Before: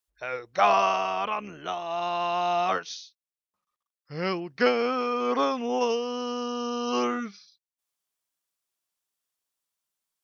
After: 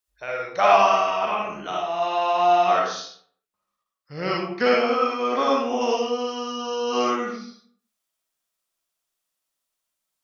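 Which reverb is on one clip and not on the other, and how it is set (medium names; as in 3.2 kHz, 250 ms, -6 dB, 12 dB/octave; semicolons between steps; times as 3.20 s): algorithmic reverb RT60 0.59 s, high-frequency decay 0.6×, pre-delay 20 ms, DRR -3 dB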